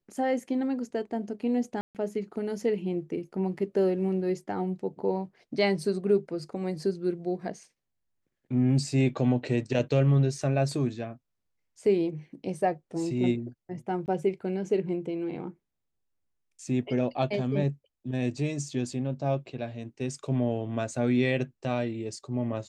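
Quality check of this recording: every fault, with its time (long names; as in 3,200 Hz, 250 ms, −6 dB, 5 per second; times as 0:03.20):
0:01.81–0:01.95: drop-out 138 ms
0:14.06–0:14.08: drop-out 19 ms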